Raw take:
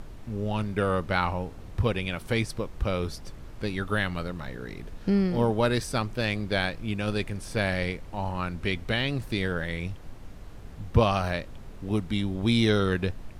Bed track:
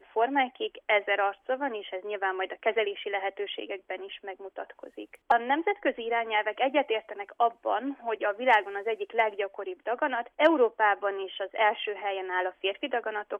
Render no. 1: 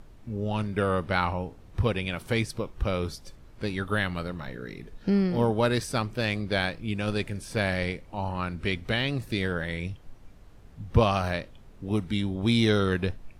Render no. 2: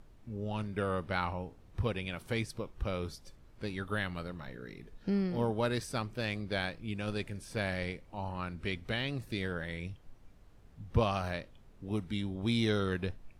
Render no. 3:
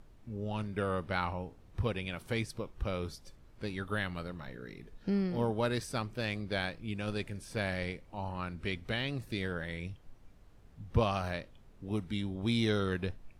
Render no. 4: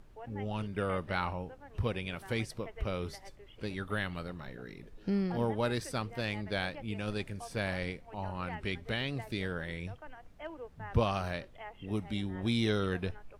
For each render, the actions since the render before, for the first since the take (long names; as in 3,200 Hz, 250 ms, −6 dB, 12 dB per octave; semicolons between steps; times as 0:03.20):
noise reduction from a noise print 8 dB
level −7.5 dB
no processing that can be heard
mix in bed track −22.5 dB